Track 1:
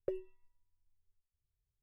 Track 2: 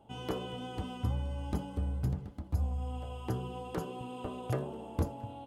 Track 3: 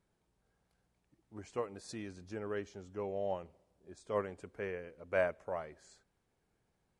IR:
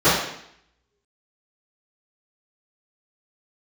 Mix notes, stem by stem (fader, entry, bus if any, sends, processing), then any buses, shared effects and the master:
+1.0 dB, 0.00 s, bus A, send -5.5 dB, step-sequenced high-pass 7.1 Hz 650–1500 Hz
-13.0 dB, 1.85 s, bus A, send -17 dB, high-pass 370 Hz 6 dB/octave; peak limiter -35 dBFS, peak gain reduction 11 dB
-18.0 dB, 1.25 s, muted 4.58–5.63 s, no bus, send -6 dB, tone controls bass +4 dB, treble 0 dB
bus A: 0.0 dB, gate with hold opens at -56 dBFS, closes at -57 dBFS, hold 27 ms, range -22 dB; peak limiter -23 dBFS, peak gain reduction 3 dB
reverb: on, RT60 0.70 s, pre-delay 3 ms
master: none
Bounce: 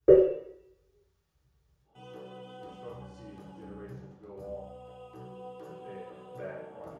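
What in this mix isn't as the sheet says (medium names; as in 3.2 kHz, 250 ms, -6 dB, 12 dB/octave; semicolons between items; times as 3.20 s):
stem 1: missing step-sequenced high-pass 7.1 Hz 650–1500 Hz; stem 3 -18.0 dB -> -28.5 dB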